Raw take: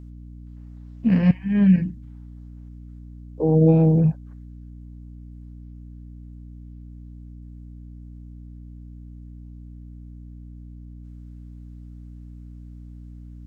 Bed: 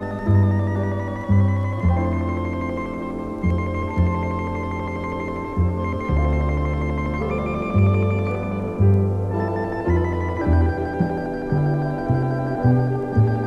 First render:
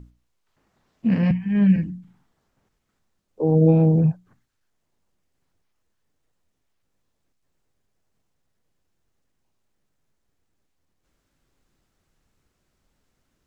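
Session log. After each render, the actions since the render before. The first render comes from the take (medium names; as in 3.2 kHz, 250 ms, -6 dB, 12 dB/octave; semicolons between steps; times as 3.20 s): hum notches 60/120/180/240/300 Hz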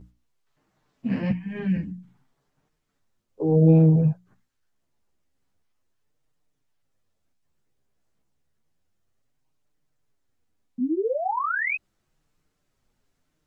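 10.78–11.76 s: painted sound rise 230–2600 Hz -23 dBFS; chorus voices 2, 0.31 Hz, delay 11 ms, depth 4.5 ms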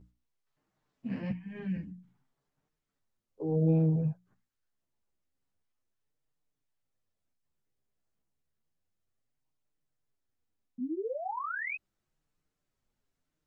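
trim -10 dB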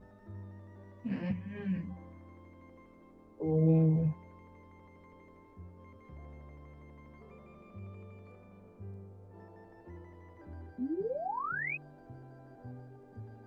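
add bed -30.5 dB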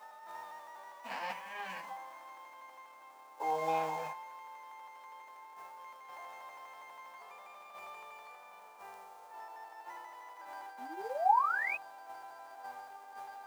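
formants flattened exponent 0.6; resonant high-pass 840 Hz, resonance Q 4.3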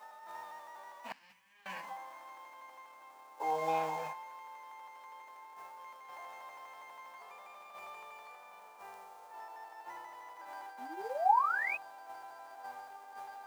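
1.12–1.66 s: amplifier tone stack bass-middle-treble 6-0-2; 9.85–10.45 s: bass shelf 180 Hz +9 dB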